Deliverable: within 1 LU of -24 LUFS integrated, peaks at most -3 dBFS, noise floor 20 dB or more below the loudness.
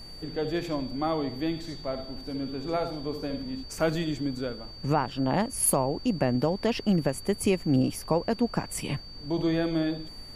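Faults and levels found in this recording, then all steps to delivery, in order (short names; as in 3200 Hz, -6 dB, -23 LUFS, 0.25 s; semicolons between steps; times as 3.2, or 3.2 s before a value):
steady tone 4600 Hz; tone level -44 dBFS; noise floor -43 dBFS; noise floor target -49 dBFS; loudness -29.0 LUFS; peak -11.0 dBFS; loudness target -24.0 LUFS
-> notch 4600 Hz, Q 30; noise print and reduce 6 dB; gain +5 dB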